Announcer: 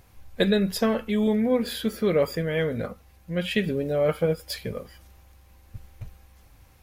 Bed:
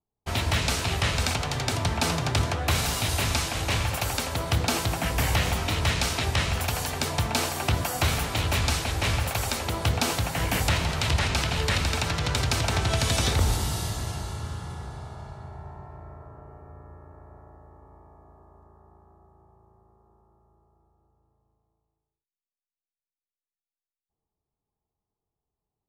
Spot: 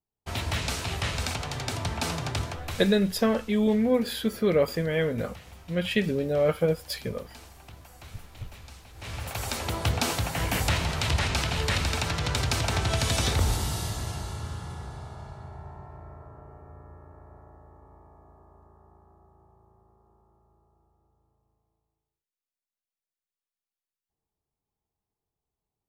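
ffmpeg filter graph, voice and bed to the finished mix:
-filter_complex "[0:a]adelay=2400,volume=-0.5dB[a];[1:a]volume=17.5dB,afade=t=out:st=2.26:d=0.73:silence=0.112202,afade=t=in:st=8.94:d=0.71:silence=0.0794328[b];[a][b]amix=inputs=2:normalize=0"

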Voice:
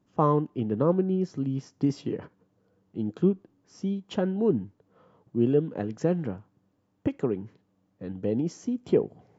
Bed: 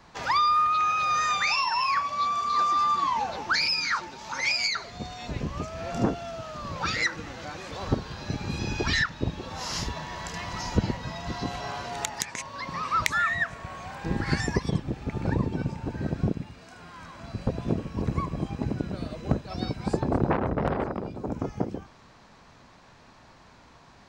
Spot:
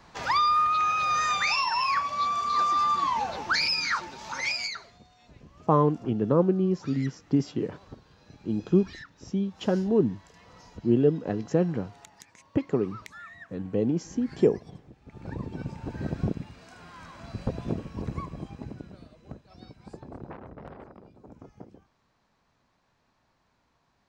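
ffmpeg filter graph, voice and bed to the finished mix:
-filter_complex "[0:a]adelay=5500,volume=1.5dB[a];[1:a]volume=17.5dB,afade=t=out:st=4.26:d=0.77:silence=0.105925,afade=t=in:st=15.03:d=1.01:silence=0.125893,afade=t=out:st=17.41:d=1.72:silence=0.16788[b];[a][b]amix=inputs=2:normalize=0"

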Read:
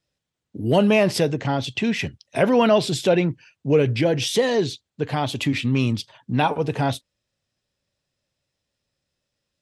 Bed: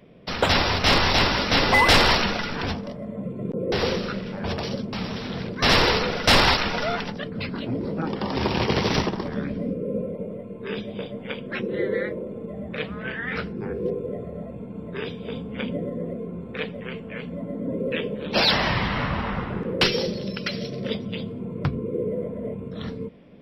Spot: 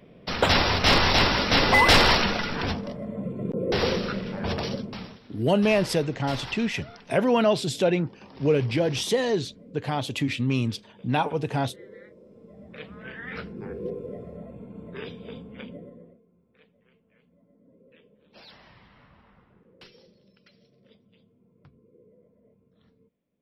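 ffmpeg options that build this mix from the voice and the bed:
-filter_complex "[0:a]adelay=4750,volume=-4dB[a];[1:a]volume=14.5dB,afade=t=out:st=4.65:d=0.54:silence=0.0944061,afade=t=in:st=12.17:d=1.41:silence=0.177828,afade=t=out:st=15.13:d=1.09:silence=0.0595662[b];[a][b]amix=inputs=2:normalize=0"

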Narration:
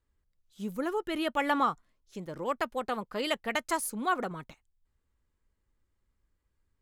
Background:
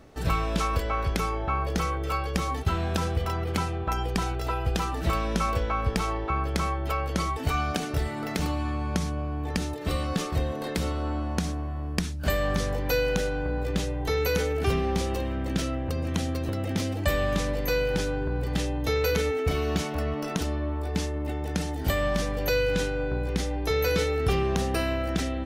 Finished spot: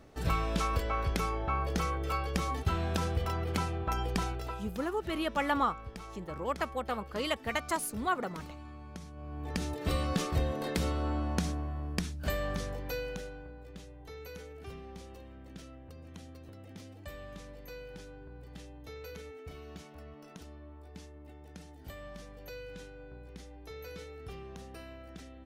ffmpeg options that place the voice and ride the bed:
-filter_complex "[0:a]adelay=4000,volume=-2dB[a];[1:a]volume=10.5dB,afade=t=out:st=4.2:d=0.51:silence=0.211349,afade=t=in:st=9.13:d=0.68:silence=0.177828,afade=t=out:st=11.3:d=2.26:silence=0.133352[b];[a][b]amix=inputs=2:normalize=0"

